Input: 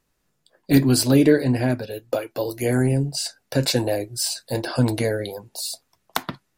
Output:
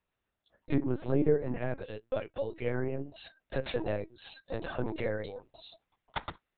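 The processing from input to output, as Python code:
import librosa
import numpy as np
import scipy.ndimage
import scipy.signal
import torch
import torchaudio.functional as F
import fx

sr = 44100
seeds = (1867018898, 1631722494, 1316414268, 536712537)

y = fx.env_lowpass_down(x, sr, base_hz=1100.0, full_db=-13.0)
y = scipy.signal.sosfilt(scipy.signal.butter(2, 290.0, 'highpass', fs=sr, output='sos'), y)
y = fx.lpc_vocoder(y, sr, seeds[0], excitation='pitch_kept', order=10)
y = y * librosa.db_to_amplitude(-8.0)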